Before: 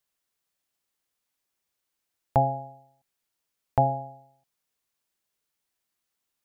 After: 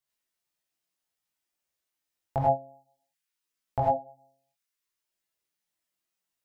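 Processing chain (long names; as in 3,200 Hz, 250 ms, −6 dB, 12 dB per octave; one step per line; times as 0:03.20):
reverb reduction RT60 0.8 s
reverb whose tail is shaped and stops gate 120 ms rising, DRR −4 dB
chorus effect 0.57 Hz, delay 15 ms, depth 7.3 ms
level −3.5 dB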